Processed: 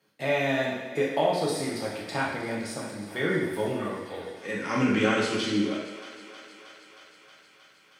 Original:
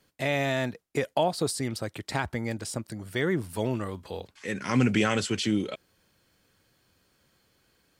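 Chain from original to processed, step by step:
high-pass filter 200 Hz 12 dB per octave
high-shelf EQ 4,900 Hz −7 dB
notch filter 7,400 Hz, Q 11
feedback echo with a high-pass in the loop 315 ms, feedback 78%, high-pass 350 Hz, level −15 dB
reverb whose tail is shaped and stops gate 300 ms falling, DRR −5 dB
level −3.5 dB

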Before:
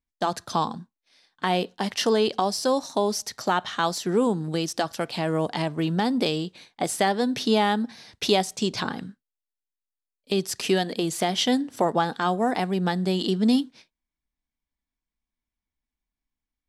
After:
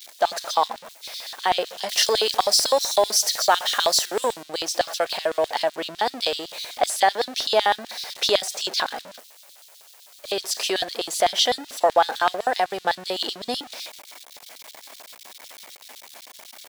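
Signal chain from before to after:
converter with a step at zero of −32.5 dBFS
0:01.89–0:04.43: high-shelf EQ 3,800 Hz +9 dB
auto-filter high-pass square 7.9 Hz 610–3,800 Hz
dynamic equaliser 1,700 Hz, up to +5 dB, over −41 dBFS, Q 2.8

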